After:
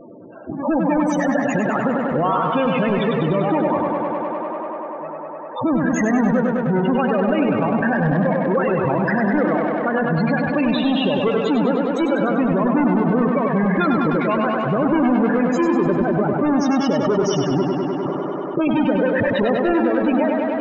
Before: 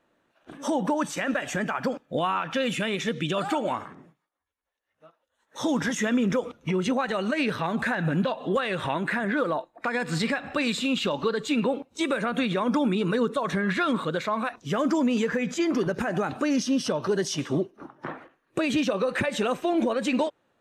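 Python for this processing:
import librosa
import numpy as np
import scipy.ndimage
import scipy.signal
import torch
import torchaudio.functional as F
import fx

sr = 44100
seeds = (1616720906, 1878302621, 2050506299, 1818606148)

p1 = fx.halfwave_hold(x, sr)
p2 = fx.spec_topn(p1, sr, count=16)
p3 = p2 + fx.echo_tape(p2, sr, ms=99, feedback_pct=88, wet_db=-3.5, lp_hz=5300.0, drive_db=13.0, wow_cents=22, dry=0)
y = fx.env_flatten(p3, sr, amount_pct=50)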